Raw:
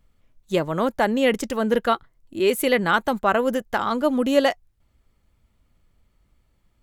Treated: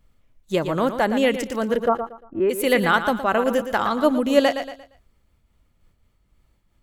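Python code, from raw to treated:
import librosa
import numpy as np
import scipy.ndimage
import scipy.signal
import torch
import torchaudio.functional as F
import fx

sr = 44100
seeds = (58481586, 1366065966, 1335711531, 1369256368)

y = fx.lowpass(x, sr, hz=fx.line((1.76, 1000.0), (2.49, 1800.0)), slope=24, at=(1.76, 2.49), fade=0.02)
y = fx.echo_feedback(y, sr, ms=116, feedback_pct=34, wet_db=-10.0)
y = fx.am_noise(y, sr, seeds[0], hz=5.7, depth_pct=55)
y = y * 10.0 ** (3.5 / 20.0)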